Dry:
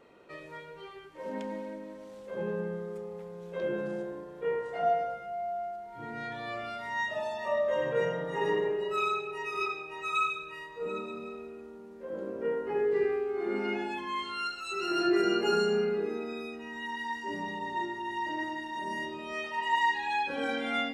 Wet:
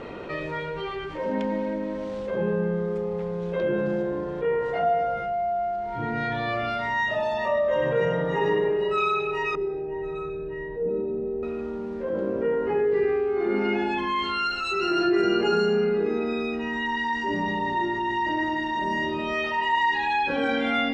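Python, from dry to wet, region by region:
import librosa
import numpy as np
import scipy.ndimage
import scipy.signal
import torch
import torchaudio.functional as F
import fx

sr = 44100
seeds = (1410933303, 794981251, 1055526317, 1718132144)

y = fx.chain(x, sr, fx.moving_average(points=36),
    fx.doubler(ms=28.0, db=-7.5), at=(9.55, 11.43))
y = scipy.signal.sosfilt(scipy.signal.butter(2, 4500.0, 'lowpass', fs=sr, output='sos'), y)
y = fx.low_shelf(y, sr, hz=130.0, db=10.0)
y = fx.env_flatten(y, sr, amount_pct=50)
y = y * librosa.db_to_amplitude(2.0)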